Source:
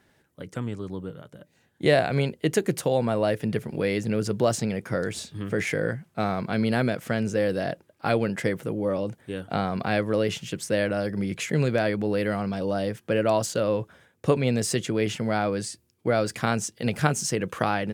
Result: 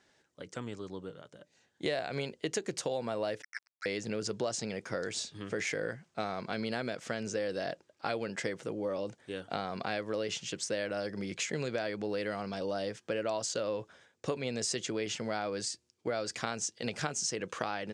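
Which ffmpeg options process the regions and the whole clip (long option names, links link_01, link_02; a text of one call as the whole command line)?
ffmpeg -i in.wav -filter_complex "[0:a]asettb=1/sr,asplit=3[link_01][link_02][link_03];[link_01]atrim=end=3.424[link_04];[link_02]atrim=start=3.42:end=3.86,asetpts=PTS-STARTPTS,afade=type=in:duration=0.004:curve=qsin,afade=type=out:start_time=0.436:duration=0.004:curve=qsin,asuperpass=centerf=1700:order=20:qfactor=1.8,acontrast=66,aeval=exprs='sgn(val(0))*max(abs(val(0))-0.00891,0)':channel_layout=same[link_05];[link_03]atrim=start=3.856[link_06];[link_04][link_05]acrossfade=duration=0.004:curve1=hsin:curve2=qsin[link_07];[link_07][link_06]acrossfade=duration=0.004:curve1=qsin:curve2=hsin,lowpass=frequency=7000:width=0.5412,lowpass=frequency=7000:width=1.3066,bass=frequency=250:gain=-9,treble=frequency=4000:gain=9,acompressor=threshold=-26dB:ratio=4,volume=-4.5dB" out.wav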